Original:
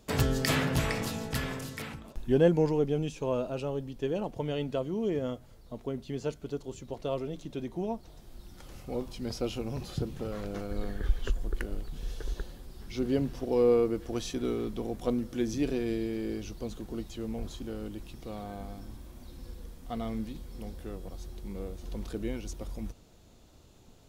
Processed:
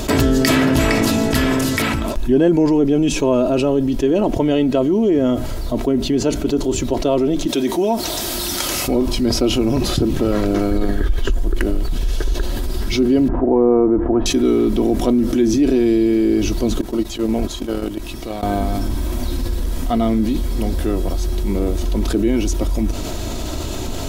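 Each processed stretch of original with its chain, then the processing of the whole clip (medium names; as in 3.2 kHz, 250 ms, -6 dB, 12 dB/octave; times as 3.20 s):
7.47–8.88 s: high-pass 340 Hz 6 dB/octave + treble shelf 2.6 kHz +8.5 dB
13.28–14.26 s: low-pass 1.5 kHz 24 dB/octave + peaking EQ 830 Hz +6.5 dB 0.6 oct
16.81–18.43 s: gate -36 dBFS, range -24 dB + bass shelf 190 Hz -6 dB
whole clip: dynamic bell 290 Hz, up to +6 dB, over -43 dBFS, Q 0.92; comb 3.1 ms, depth 46%; level flattener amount 70%; trim +3.5 dB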